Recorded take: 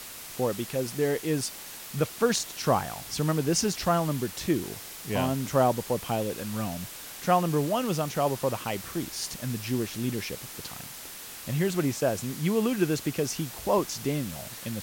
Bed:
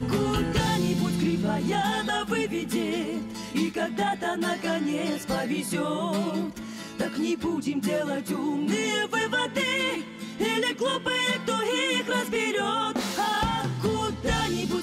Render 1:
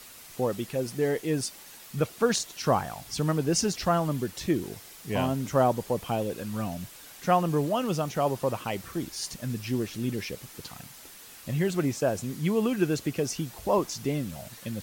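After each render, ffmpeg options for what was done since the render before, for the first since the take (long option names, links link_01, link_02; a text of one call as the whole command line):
ffmpeg -i in.wav -af "afftdn=noise_reduction=7:noise_floor=-42" out.wav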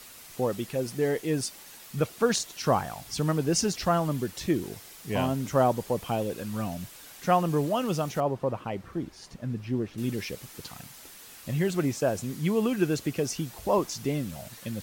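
ffmpeg -i in.wav -filter_complex "[0:a]asettb=1/sr,asplit=3[link_01][link_02][link_03];[link_01]atrim=end=8.204[link_04];[link_02]atrim=start=8.2:end=9.98,asetpts=PTS-STARTPTS,afade=type=in:duration=0.004:curve=qsin,afade=type=out:start_time=1.776:duration=0.004:curve=qsin,lowpass=frequency=1100:poles=1[link_05];[link_03]atrim=start=9.976[link_06];[link_04][link_05]acrossfade=duration=0.004:curve1=hsin:curve2=qsin[link_07];[link_07][link_06]acrossfade=duration=0.004:curve1=qsin:curve2=hsin" out.wav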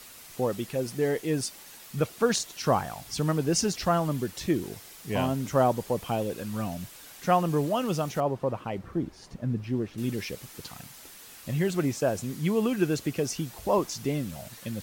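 ffmpeg -i in.wav -filter_complex "[0:a]asettb=1/sr,asplit=3[link_01][link_02][link_03];[link_01]atrim=end=8.784[link_04];[link_02]atrim=start=8.78:end=9.64,asetpts=PTS-STARTPTS,afade=type=in:duration=0.004:curve=qsin,afade=type=out:start_time=0.856:duration=0.004:curve=qsin,tiltshelf=frequency=1200:gain=3.5[link_05];[link_03]atrim=start=9.636[link_06];[link_04][link_05]acrossfade=duration=0.004:curve1=hsin:curve2=qsin[link_07];[link_07][link_06]acrossfade=duration=0.004:curve1=qsin:curve2=hsin" out.wav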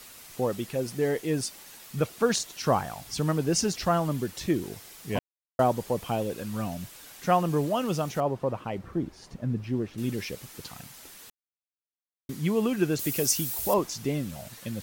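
ffmpeg -i in.wav -filter_complex "[0:a]asettb=1/sr,asplit=3[link_01][link_02][link_03];[link_01]atrim=end=12.994[link_04];[link_02]atrim=start=12.99:end=13.74,asetpts=PTS-STARTPTS,afade=type=in:duration=0.004:curve=qsin,afade=type=out:start_time=0.746:duration=0.004:curve=qsin,aemphasis=mode=production:type=75fm[link_05];[link_03]atrim=start=13.736[link_06];[link_04][link_05]acrossfade=duration=0.004:curve1=hsin:curve2=qsin[link_07];[link_07][link_06]acrossfade=duration=0.004:curve1=qsin:curve2=hsin,asplit=5[link_08][link_09][link_10][link_11][link_12];[link_08]atrim=end=5.19,asetpts=PTS-STARTPTS,afade=type=out:start_time=5.186:duration=0.004:curve=hsin[link_13];[link_09]atrim=start=5.19:end=5.59,asetpts=PTS-STARTPTS,volume=0[link_14];[link_10]atrim=start=5.59:end=11.3,asetpts=PTS-STARTPTS,afade=type=in:duration=0.004:curve=hsin,afade=type=out:start_time=5.706:duration=0.004:curve=hsin[link_15];[link_11]atrim=start=11.3:end=12.29,asetpts=PTS-STARTPTS,volume=0[link_16];[link_12]atrim=start=12.29,asetpts=PTS-STARTPTS,afade=type=in:duration=0.004:curve=hsin[link_17];[link_13][link_14][link_15][link_16][link_17]concat=n=5:v=0:a=1" out.wav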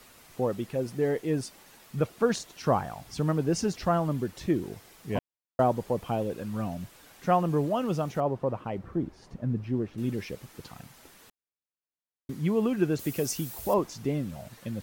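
ffmpeg -i in.wav -af "highshelf=frequency=2400:gain=-9.5" out.wav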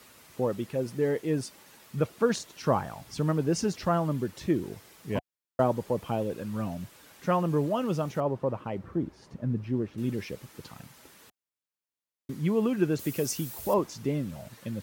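ffmpeg -i in.wav -af "highpass=62,bandreject=frequency=730:width=12" out.wav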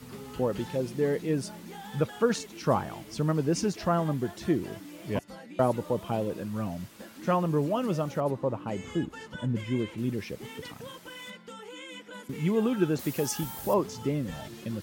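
ffmpeg -i in.wav -i bed.wav -filter_complex "[1:a]volume=-18dB[link_01];[0:a][link_01]amix=inputs=2:normalize=0" out.wav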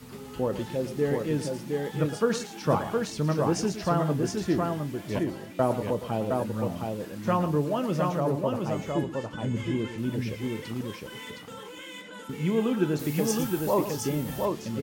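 ffmpeg -i in.wav -filter_complex "[0:a]asplit=2[link_01][link_02];[link_02]adelay=27,volume=-13.5dB[link_03];[link_01][link_03]amix=inputs=2:normalize=0,asplit=2[link_04][link_05];[link_05]aecho=0:1:112|715:0.251|0.668[link_06];[link_04][link_06]amix=inputs=2:normalize=0" out.wav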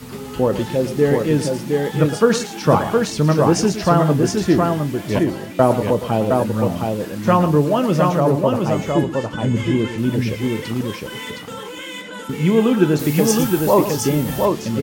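ffmpeg -i in.wav -af "volume=10.5dB,alimiter=limit=-1dB:level=0:latency=1" out.wav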